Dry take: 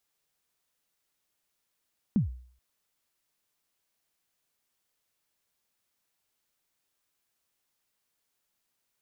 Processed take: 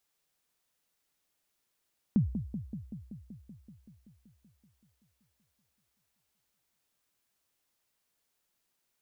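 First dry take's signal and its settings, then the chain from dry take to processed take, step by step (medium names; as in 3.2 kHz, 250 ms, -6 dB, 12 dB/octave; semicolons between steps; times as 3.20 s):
kick drum length 0.43 s, from 240 Hz, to 62 Hz, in 127 ms, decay 0.52 s, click off, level -18 dB
on a send: bucket-brigade echo 190 ms, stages 1024, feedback 74%, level -9 dB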